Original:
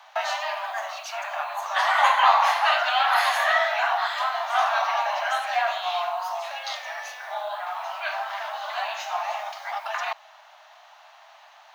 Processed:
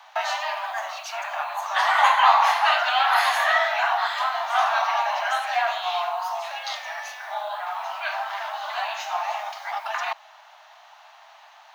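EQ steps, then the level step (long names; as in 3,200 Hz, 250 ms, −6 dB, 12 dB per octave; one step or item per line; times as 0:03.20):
high-pass filter 590 Hz 24 dB per octave
parametric band 890 Hz +2 dB 0.2 octaves
+1.0 dB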